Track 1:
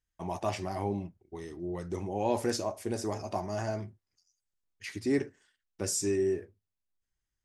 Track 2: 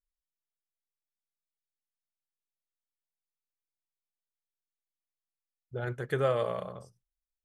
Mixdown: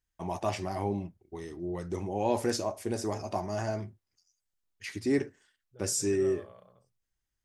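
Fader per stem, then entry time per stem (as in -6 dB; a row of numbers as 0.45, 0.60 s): +1.0, -19.0 dB; 0.00, 0.00 s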